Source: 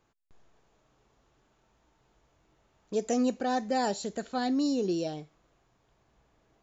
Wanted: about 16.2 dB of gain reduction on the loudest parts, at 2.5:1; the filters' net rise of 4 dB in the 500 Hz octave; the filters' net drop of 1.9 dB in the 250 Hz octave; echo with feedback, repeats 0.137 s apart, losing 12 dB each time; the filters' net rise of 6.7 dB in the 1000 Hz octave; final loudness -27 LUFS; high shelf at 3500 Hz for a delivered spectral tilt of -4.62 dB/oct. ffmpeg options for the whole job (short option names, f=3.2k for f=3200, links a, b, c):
-af "equalizer=f=250:t=o:g=-3.5,equalizer=f=500:t=o:g=3.5,equalizer=f=1k:t=o:g=9,highshelf=f=3.5k:g=-7,acompressor=threshold=-46dB:ratio=2.5,aecho=1:1:137|274|411:0.251|0.0628|0.0157,volume=15.5dB"